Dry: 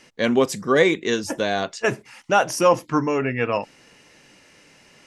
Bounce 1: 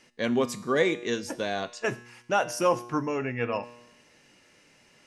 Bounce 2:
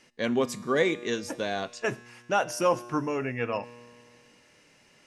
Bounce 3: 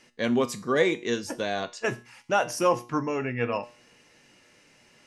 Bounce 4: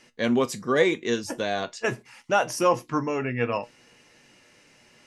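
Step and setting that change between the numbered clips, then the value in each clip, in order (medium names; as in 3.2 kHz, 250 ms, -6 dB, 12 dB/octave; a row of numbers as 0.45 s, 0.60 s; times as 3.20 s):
feedback comb, decay: 0.94 s, 2.2 s, 0.39 s, 0.16 s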